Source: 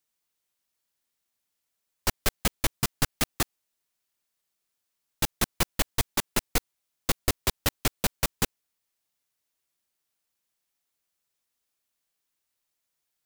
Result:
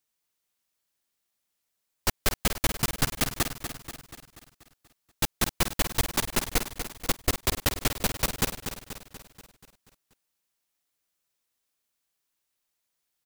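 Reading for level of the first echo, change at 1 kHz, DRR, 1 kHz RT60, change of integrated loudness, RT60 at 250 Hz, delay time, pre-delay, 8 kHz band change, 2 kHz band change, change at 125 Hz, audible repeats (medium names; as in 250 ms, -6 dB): -8.5 dB, +1.0 dB, no reverb, no reverb, +0.5 dB, no reverb, 241 ms, no reverb, +1.0 dB, +1.0 dB, +1.0 dB, 6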